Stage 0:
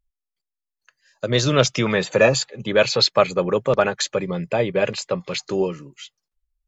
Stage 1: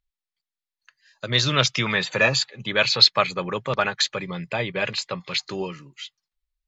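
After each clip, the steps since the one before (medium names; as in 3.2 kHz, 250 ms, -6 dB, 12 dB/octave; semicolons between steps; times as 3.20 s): graphic EQ 125/500/1000/2000/4000 Hz +4/-4/+5/+7/+10 dB; trim -7 dB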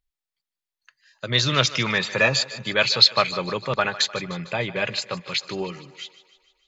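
thinning echo 151 ms, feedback 57%, high-pass 270 Hz, level -16 dB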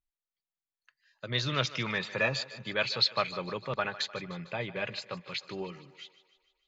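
distance through air 100 m; trim -8.5 dB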